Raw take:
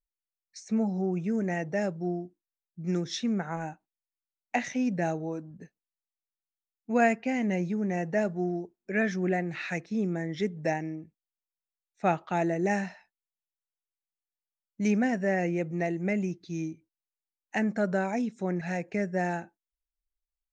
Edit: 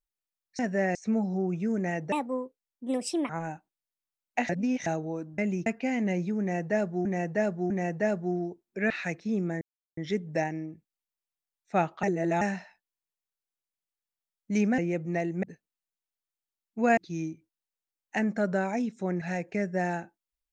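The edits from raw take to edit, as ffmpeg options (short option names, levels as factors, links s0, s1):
-filter_complex "[0:a]asplit=18[s0][s1][s2][s3][s4][s5][s6][s7][s8][s9][s10][s11][s12][s13][s14][s15][s16][s17];[s0]atrim=end=0.592[s18];[s1]atrim=start=15.078:end=15.442[s19];[s2]atrim=start=0.588:end=1.764[s20];[s3]atrim=start=1.76:end=3.46,asetpts=PTS-STARTPTS,asetrate=63945,aresample=44100,atrim=end_sample=51703,asetpts=PTS-STARTPTS[s21];[s4]atrim=start=3.456:end=4.662[s22];[s5]atrim=start=4.658:end=5.032,asetpts=PTS-STARTPTS,areverse[s23];[s6]atrim=start=5.028:end=5.552[s24];[s7]atrim=start=16.088:end=16.372[s25];[s8]atrim=start=7.088:end=8.482[s26];[s9]atrim=start=7.828:end=8.482[s27];[s10]atrim=start=7.828:end=9.032[s28];[s11]atrim=start=9.558:end=10.27,asetpts=PTS-STARTPTS,afade=t=out:st=0.708:d=0.004:c=hsin,apad=pad_dur=0.36[s29];[s12]atrim=start=10.27:end=12.332,asetpts=PTS-STARTPTS,afade=t=in:d=0.004:c=hsin[s30];[s13]atrim=start=12.328:end=12.712,asetpts=PTS-STARTPTS,areverse[s31];[s14]atrim=start=12.708:end=15.082[s32];[s15]atrim=start=15.438:end=16.092[s33];[s16]atrim=start=5.548:end=7.092[s34];[s17]atrim=start=16.368[s35];[s18][s19]acrossfade=d=0.004:c1=hsin:c2=hsin[s36];[s36][s20]acrossfade=d=0.004:c1=hsin:c2=hsin[s37];[s37][s21]acrossfade=d=0.004:c1=hsin:c2=hsin[s38];[s38][s22]acrossfade=d=0.004:c1=hsin:c2=hsin[s39];[s39][s23]acrossfade=d=0.004:c1=hsin:c2=hsin[s40];[s40][s24]acrossfade=d=0.004:c1=hsin:c2=hsin[s41];[s41][s25]acrossfade=d=0.004:c1=hsin:c2=hsin[s42];[s42][s26]acrossfade=d=0.004:c1=hsin:c2=hsin[s43];[s43][s27]acrossfade=d=0.004:c1=hsin:c2=hsin[s44];[s44][s28]acrossfade=d=0.004:c1=hsin:c2=hsin[s45];[s29][s30]concat=n=2:v=0:a=1[s46];[s45][s46]acrossfade=d=0.004:c1=hsin:c2=hsin[s47];[s47][s31]acrossfade=d=0.004:c1=hsin:c2=hsin[s48];[s48][s32]acrossfade=d=0.004:c1=hsin:c2=hsin[s49];[s49][s33]acrossfade=d=0.004:c1=hsin:c2=hsin[s50];[s50][s34]acrossfade=d=0.004:c1=hsin:c2=hsin[s51];[s51][s35]acrossfade=d=0.004:c1=hsin:c2=hsin"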